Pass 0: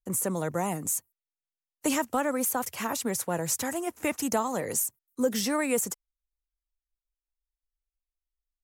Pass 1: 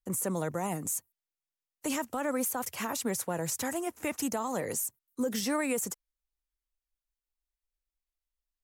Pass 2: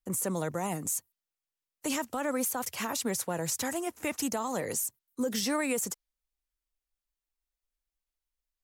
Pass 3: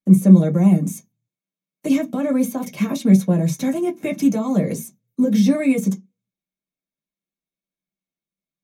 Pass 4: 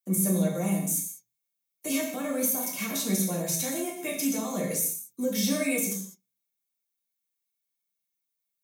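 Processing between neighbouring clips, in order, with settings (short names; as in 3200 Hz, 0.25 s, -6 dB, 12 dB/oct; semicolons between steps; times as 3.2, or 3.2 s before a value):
limiter -21 dBFS, peak gain reduction 6 dB; gain -1.5 dB
dynamic EQ 4300 Hz, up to +4 dB, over -52 dBFS, Q 0.93
in parallel at -3.5 dB: crossover distortion -50 dBFS; on the sum: reverb RT60 0.15 s, pre-delay 3 ms, DRR -2 dB; gain -7.5 dB
RIAA curve recording; non-linear reverb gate 0.23 s falling, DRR -1 dB; gain -8 dB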